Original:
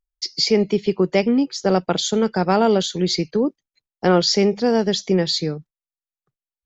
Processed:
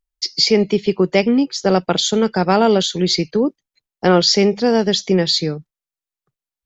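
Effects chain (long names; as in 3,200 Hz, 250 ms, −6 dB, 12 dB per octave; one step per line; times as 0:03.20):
dynamic equaliser 3,200 Hz, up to +3 dB, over −36 dBFS, Q 0.8
level +2.5 dB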